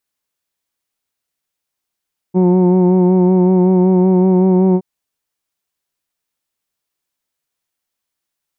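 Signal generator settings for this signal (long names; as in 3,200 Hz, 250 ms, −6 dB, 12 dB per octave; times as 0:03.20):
vowel by formant synthesis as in who'd, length 2.47 s, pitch 181 Hz, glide +0.5 semitones, vibrato depth 0.35 semitones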